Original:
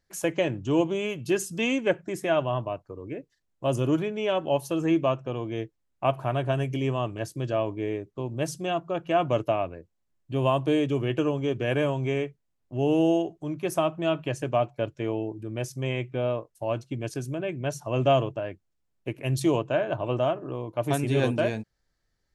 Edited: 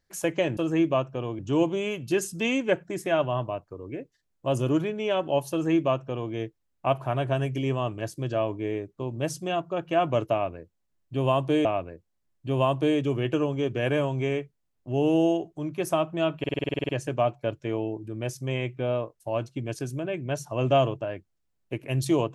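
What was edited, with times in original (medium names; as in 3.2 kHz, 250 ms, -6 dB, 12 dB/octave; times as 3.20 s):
4.69–5.51 s: copy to 0.57 s
9.50–10.83 s: loop, 2 plays
14.24 s: stutter 0.05 s, 11 plays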